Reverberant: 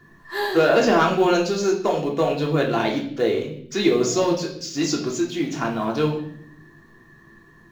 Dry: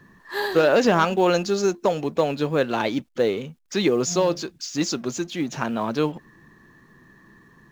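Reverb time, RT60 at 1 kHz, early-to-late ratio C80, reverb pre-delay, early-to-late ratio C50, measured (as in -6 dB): 0.65 s, 0.55 s, 11.5 dB, 3 ms, 7.5 dB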